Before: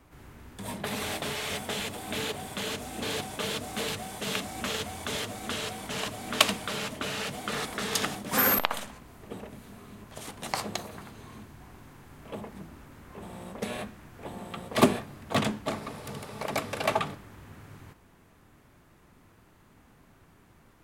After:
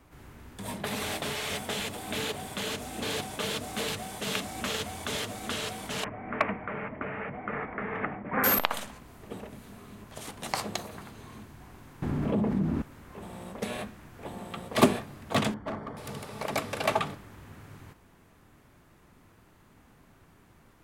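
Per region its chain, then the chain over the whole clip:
0:06.04–0:08.44: elliptic low-pass filter 2,200 Hz, stop band 50 dB + hard clipping −13.5 dBFS
0:12.02–0:12.82: low-pass filter 3,200 Hz 6 dB per octave + parametric band 200 Hz +14.5 dB 2.5 octaves + envelope flattener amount 70%
0:15.54–0:15.97: Savitzky-Golay smoothing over 41 samples + hard clipping −30 dBFS
whole clip: no processing

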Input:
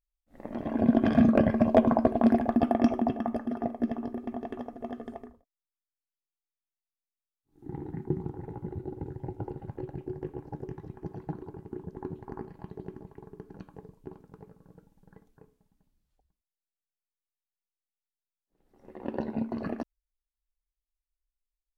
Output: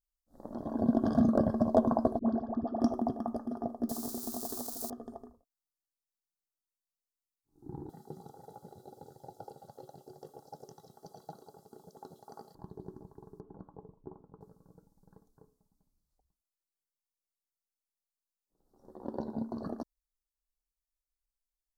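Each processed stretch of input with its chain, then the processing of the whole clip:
0:02.19–0:02.81: high-frequency loss of the air 190 metres + tuned comb filter 220 Hz, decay 0.21 s, mix 50% + all-pass dispersion highs, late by 59 ms, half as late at 560 Hz
0:03.89–0:04.90: spike at every zero crossing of −28.5 dBFS + high-shelf EQ 3,400 Hz +5.5 dB
0:07.89–0:12.55: high-pass filter 350 Hz + high shelf with overshoot 2,000 Hz +10 dB, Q 1.5 + comb filter 1.5 ms, depth 81%
0:13.40–0:14.41: low-pass filter 1,200 Hz + dynamic equaliser 890 Hz, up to +4 dB, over −58 dBFS, Q 0.8
whole clip: Chebyshev band-stop filter 1,200–4,500 Hz, order 2; high-shelf EQ 4,500 Hz +5.5 dB; level −4 dB

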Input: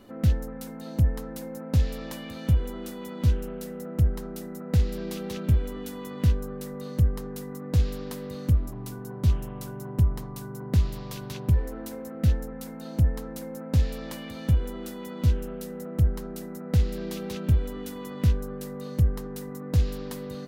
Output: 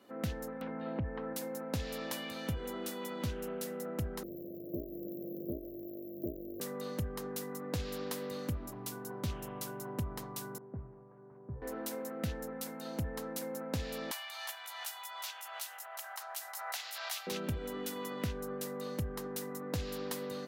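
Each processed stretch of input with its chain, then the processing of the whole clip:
0:00.61–0:01.33: inverse Chebyshev low-pass filter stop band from 9,000 Hz, stop band 60 dB + multiband upward and downward compressor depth 40%
0:04.23–0:06.60: samples sorted by size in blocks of 128 samples + downward compressor 2 to 1, threshold −33 dBFS + linear-phase brick-wall band-stop 660–13,000 Hz
0:10.58–0:11.62: linear delta modulator 32 kbit/s, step −42 dBFS + Bessel low-pass filter 870 Hz, order 6 + tuned comb filter 130 Hz, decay 0.73 s, harmonics odd, mix 70%
0:14.11–0:17.27: Butterworth high-pass 670 Hz 72 dB per octave + single-tap delay 361 ms −7 dB + background raised ahead of every attack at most 28 dB per second
whole clip: high-pass filter 470 Hz 6 dB per octave; downward compressor 4 to 1, threshold −35 dBFS; multiband upward and downward expander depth 40%; level +1.5 dB

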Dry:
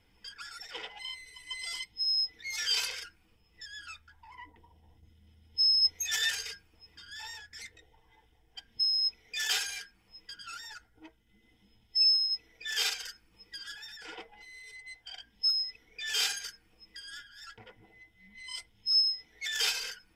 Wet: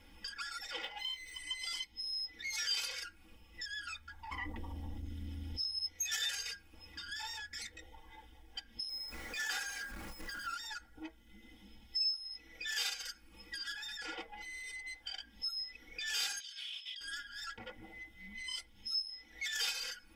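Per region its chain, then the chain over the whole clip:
0:00.81–0:01.38: running median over 3 samples + double-tracking delay 22 ms −10.5 dB
0:04.31–0:05.61: low-shelf EQ 230 Hz +7 dB + amplitude modulation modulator 200 Hz, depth 35% + envelope flattener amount 50%
0:08.89–0:10.54: converter with a step at zero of −43.5 dBFS + high shelf with overshoot 2,100 Hz −6 dB, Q 1.5
0:16.40–0:17.01: four-pole ladder band-pass 3,500 Hz, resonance 80% + envelope flattener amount 100%
whole clip: comb filter 3.6 ms, depth 79%; downward compressor 2 to 1, threshold −51 dBFS; level +5.5 dB

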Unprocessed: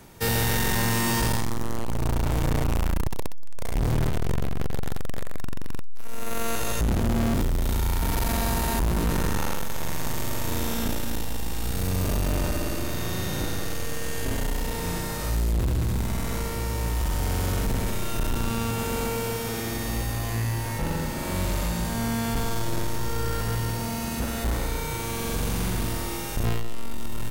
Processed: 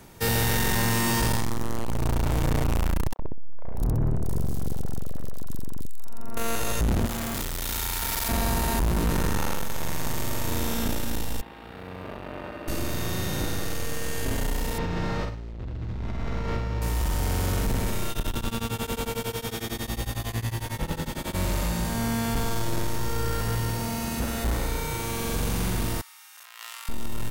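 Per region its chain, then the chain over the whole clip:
0:03.13–0:06.37: parametric band 2,300 Hz −13 dB 2.1 octaves + three-band delay without the direct sound mids, lows, highs 60/640 ms, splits 560/2,300 Hz
0:07.06–0:08.29: tilt shelving filter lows −9.5 dB, about 690 Hz + hard clipping −25 dBFS
0:11.41–0:12.68: high-pass filter 660 Hz 6 dB per octave + high-frequency loss of the air 490 metres
0:14.78–0:16.82: high-frequency loss of the air 210 metres + compressor whose output falls as the input rises −30 dBFS + double-tracking delay 45 ms −10.5 dB
0:18.10–0:21.35: parametric band 3,400 Hz +8 dB 0.29 octaves + tremolo along a rectified sine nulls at 11 Hz
0:26.01–0:26.89: high-pass filter 1,100 Hz 24 dB per octave + compressor whose output falls as the input rises −46 dBFS
whole clip: no processing

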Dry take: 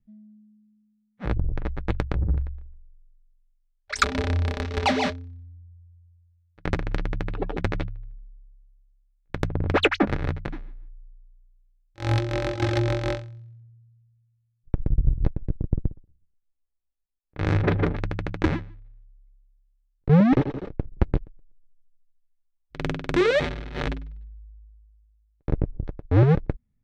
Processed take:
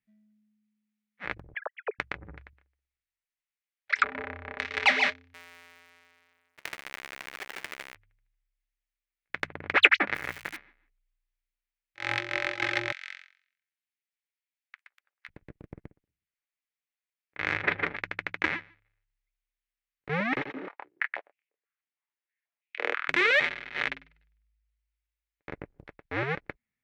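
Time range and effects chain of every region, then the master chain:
0:01.54–0:01.99: three sine waves on the formant tracks + resonant band-pass 530 Hz, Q 2.2 + upward compression, threshold −30 dBFS
0:02.53–0:04.59: treble cut that deepens with the level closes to 1,200 Hz, closed at −24.5 dBFS + high-pass filter 59 Hz
0:05.34–0:07.95: each half-wave held at its own peak + bass and treble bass −7 dB, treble +2 dB + downward compressor 4 to 1, threshold −34 dBFS
0:10.15–0:10.57: spike at every zero crossing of −19.5 dBFS + high-shelf EQ 4,500 Hz −8.5 dB
0:12.92–0:15.29: high-pass filter 1,400 Hz 24 dB per octave + downward compressor 3 to 1, threshold −43 dBFS
0:20.52–0:23.08: high-shelf EQ 3,500 Hz −10.5 dB + double-tracking delay 27 ms −3 dB + high-pass on a step sequencer 6.2 Hz 240–2,500 Hz
whole clip: high-pass filter 700 Hz 6 dB per octave; parametric band 2,100 Hz +15 dB 1.3 octaves; level −6 dB

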